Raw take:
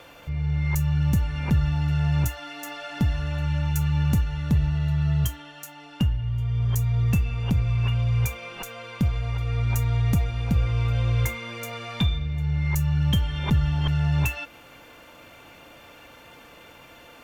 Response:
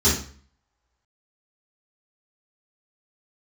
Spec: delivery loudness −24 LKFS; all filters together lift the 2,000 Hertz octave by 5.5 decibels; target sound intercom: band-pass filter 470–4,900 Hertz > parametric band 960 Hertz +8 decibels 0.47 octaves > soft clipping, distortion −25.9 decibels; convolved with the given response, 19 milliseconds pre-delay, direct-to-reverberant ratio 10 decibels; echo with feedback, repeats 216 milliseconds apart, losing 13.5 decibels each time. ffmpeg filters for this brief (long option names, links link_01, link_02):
-filter_complex "[0:a]equalizer=frequency=2000:width_type=o:gain=6.5,aecho=1:1:216|432:0.211|0.0444,asplit=2[link_01][link_02];[1:a]atrim=start_sample=2205,adelay=19[link_03];[link_02][link_03]afir=irnorm=-1:irlink=0,volume=-26.5dB[link_04];[link_01][link_04]amix=inputs=2:normalize=0,highpass=470,lowpass=4900,equalizer=frequency=960:width_type=o:width=0.47:gain=8,asoftclip=threshold=-16.5dB,volume=8.5dB"